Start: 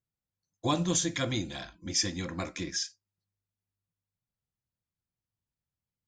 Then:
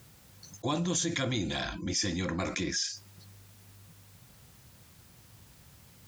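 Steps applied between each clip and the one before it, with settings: high-pass 49 Hz; level flattener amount 70%; trim -4 dB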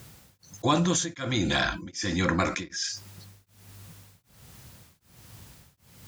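dynamic bell 1.4 kHz, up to +6 dB, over -50 dBFS, Q 1.5; tremolo of two beating tones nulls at 1.3 Hz; trim +7 dB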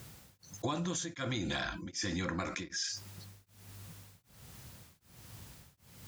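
compression 6:1, threshold -30 dBFS, peak gain reduction 11 dB; trim -2.5 dB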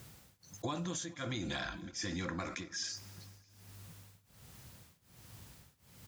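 feedback delay 220 ms, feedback 59%, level -22 dB; trim -3 dB

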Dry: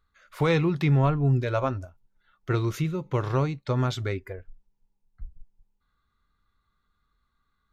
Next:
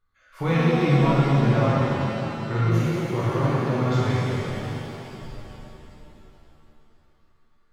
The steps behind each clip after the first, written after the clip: treble shelf 6.1 kHz -5.5 dB; band-stop 3.8 kHz, Q 14; pitch-shifted reverb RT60 3.4 s, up +7 st, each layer -8 dB, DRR -9 dB; trim -6 dB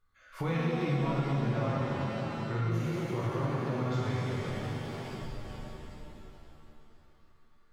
compression 2:1, threshold -36 dBFS, peak gain reduction 12 dB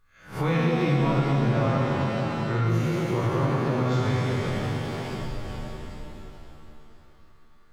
reverse spectral sustain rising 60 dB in 0.33 s; trim +6.5 dB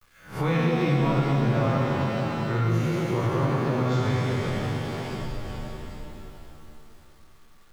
bit crusher 10-bit

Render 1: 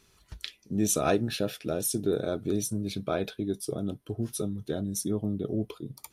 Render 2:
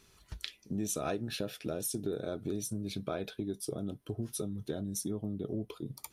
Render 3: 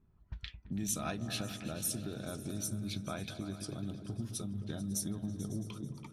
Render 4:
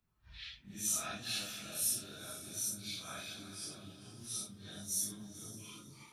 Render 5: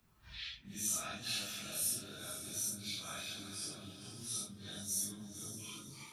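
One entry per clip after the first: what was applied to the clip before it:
compression 3:1, threshold -34 dBFS, peak gain reduction 11 dB
level-controlled noise filter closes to 470 Hz, open at -33 dBFS; peaking EQ 440 Hz -13.5 dB 1.1 oct; delay with an opening low-pass 110 ms, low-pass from 200 Hz, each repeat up 2 oct, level -6 dB; trim +1 dB
phase randomisation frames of 200 ms; tilt shelf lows -8.5 dB; trim -4.5 dB
three bands compressed up and down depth 40%

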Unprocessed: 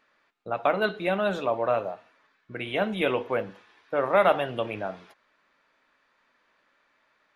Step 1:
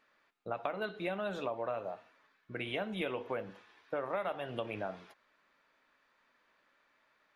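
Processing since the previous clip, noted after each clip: compression 6:1, threshold -29 dBFS, peak gain reduction 13 dB; trim -4 dB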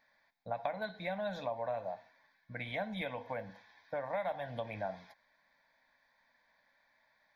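static phaser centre 1.9 kHz, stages 8; trim +2.5 dB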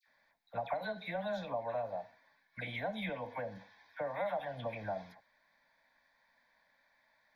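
phase dispersion lows, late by 82 ms, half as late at 1.4 kHz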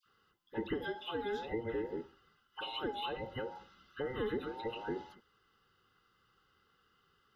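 every band turned upside down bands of 1 kHz

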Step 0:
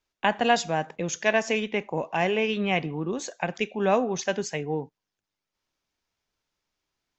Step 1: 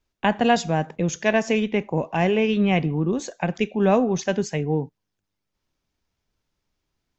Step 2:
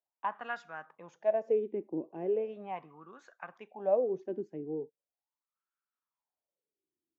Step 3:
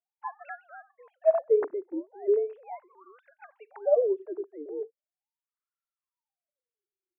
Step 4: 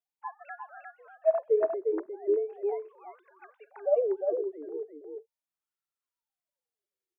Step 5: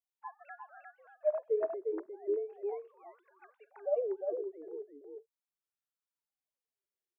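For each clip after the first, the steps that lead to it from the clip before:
bass shelf 320 Hz +12 dB
wah-wah 0.39 Hz 330–1400 Hz, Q 6.7; trim -2.5 dB
formants replaced by sine waves; trim +5 dB
delay 354 ms -4.5 dB; trim -2.5 dB
warped record 33 1/3 rpm, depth 100 cents; trim -6.5 dB

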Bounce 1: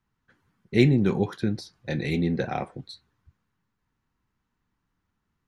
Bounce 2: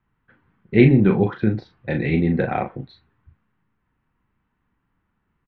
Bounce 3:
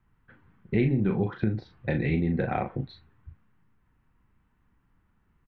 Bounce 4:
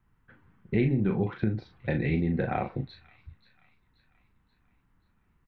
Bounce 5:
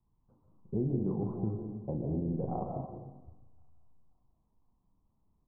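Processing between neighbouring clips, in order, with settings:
low-pass 2.8 kHz 24 dB/octave; doubling 37 ms -7 dB; trim +5.5 dB
bass shelf 100 Hz +8.5 dB; compression 3:1, threshold -25 dBFS, peak gain reduction 14 dB
feedback echo behind a high-pass 532 ms, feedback 49%, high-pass 2.5 kHz, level -15 dB; trim -1 dB
steep low-pass 1.1 kHz 72 dB/octave; on a send at -3 dB: reverberation RT60 1.1 s, pre-delay 100 ms; on the sum: trim -7 dB

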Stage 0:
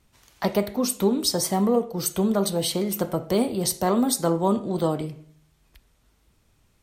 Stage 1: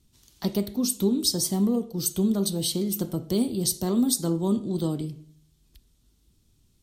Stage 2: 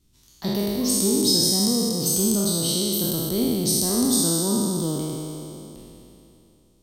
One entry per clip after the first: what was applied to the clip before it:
high-order bell 1.1 kHz -12.5 dB 2.7 oct
spectral sustain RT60 2.97 s; trim -2 dB

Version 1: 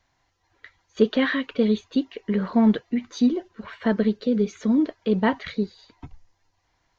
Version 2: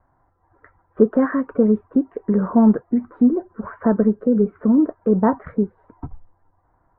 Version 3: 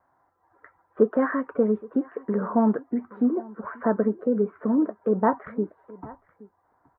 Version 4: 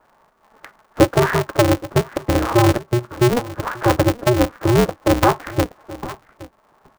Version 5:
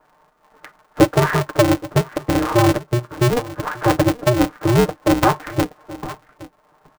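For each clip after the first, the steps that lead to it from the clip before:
steep low-pass 1.4 kHz 36 dB/octave; in parallel at -1 dB: compression, threshold -30 dBFS, peak gain reduction 17 dB; on the sum: trim +3 dB
high-pass 520 Hz 6 dB/octave; delay 822 ms -21.5 dB
in parallel at +1 dB: compression, threshold -28 dBFS, peak gain reduction 14.5 dB; on the sum: polarity switched at an audio rate 120 Hz; trim +4 dB
comb 6.6 ms, depth 49%; trim -1 dB

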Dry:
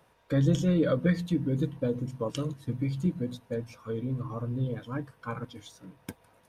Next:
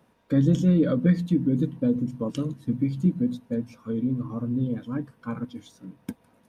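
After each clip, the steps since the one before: peaking EQ 230 Hz +13.5 dB 0.96 oct; trim -2.5 dB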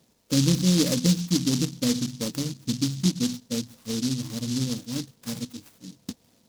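delay time shaken by noise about 4.8 kHz, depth 0.24 ms; trim -1 dB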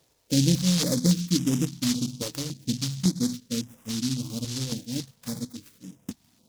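step-sequenced notch 3.6 Hz 210–4300 Hz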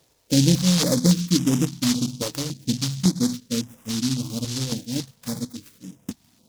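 dynamic bell 920 Hz, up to +5 dB, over -42 dBFS, Q 0.87; trim +3.5 dB

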